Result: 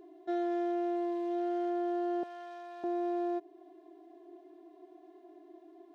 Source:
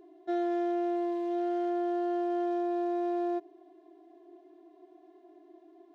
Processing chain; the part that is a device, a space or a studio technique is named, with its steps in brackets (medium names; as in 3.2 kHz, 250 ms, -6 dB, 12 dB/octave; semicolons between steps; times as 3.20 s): parallel compression (in parallel at -3 dB: compression, threshold -43 dBFS, peak gain reduction 14.5 dB); 2.23–2.84 s: on the sum: high-pass 1.1 kHz 12 dB/octave; trim -3.5 dB